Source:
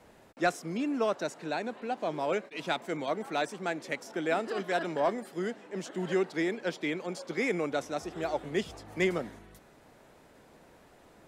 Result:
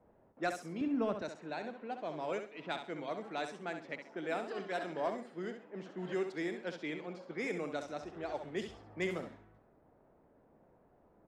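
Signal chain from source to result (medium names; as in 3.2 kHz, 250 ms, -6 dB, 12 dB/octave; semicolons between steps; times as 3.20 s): level-controlled noise filter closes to 860 Hz, open at -25 dBFS; 0.81–1.22 s: tone controls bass +15 dB, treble -12 dB; feedback delay 66 ms, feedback 25%, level -8 dB; trim -8 dB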